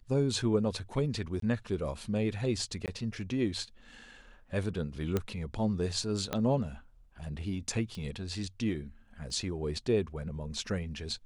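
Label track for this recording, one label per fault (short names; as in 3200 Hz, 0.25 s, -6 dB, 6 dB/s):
1.400000	1.420000	gap 23 ms
2.860000	2.880000	gap 18 ms
5.170000	5.170000	pop -16 dBFS
6.330000	6.330000	pop -16 dBFS
7.950000	7.950000	pop -29 dBFS
9.300000	9.300000	gap 2.2 ms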